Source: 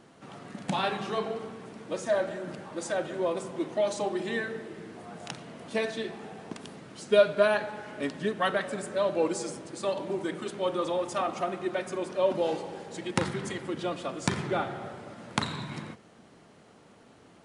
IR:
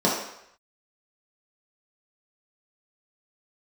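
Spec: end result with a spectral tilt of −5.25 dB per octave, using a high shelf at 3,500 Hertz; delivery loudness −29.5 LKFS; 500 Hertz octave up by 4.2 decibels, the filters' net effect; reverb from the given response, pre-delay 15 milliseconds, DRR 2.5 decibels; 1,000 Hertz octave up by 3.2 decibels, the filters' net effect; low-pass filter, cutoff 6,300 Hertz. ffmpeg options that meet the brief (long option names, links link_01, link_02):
-filter_complex "[0:a]lowpass=6300,equalizer=frequency=500:width_type=o:gain=4.5,equalizer=frequency=1000:width_type=o:gain=3,highshelf=frequency=3500:gain=-5,asplit=2[link_01][link_02];[1:a]atrim=start_sample=2205,adelay=15[link_03];[link_02][link_03]afir=irnorm=-1:irlink=0,volume=-19dB[link_04];[link_01][link_04]amix=inputs=2:normalize=0,volume=-6dB"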